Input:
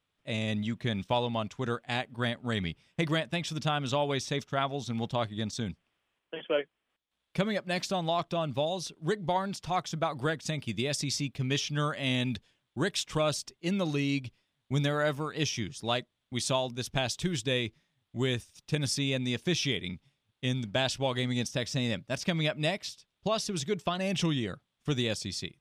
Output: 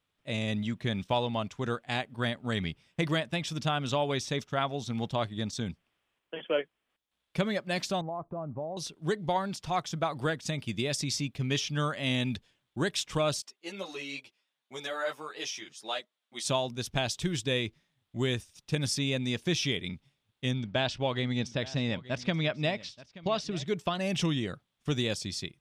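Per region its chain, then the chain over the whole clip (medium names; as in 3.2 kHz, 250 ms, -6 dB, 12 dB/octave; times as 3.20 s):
8.01–8.77 s: low-pass 1.1 kHz 24 dB/octave + compression 2:1, threshold -37 dBFS
13.42–16.45 s: high-pass 480 Hz + three-phase chorus
20.51–23.68 s: low-pass 4.3 kHz + delay 879 ms -18.5 dB
whole clip: none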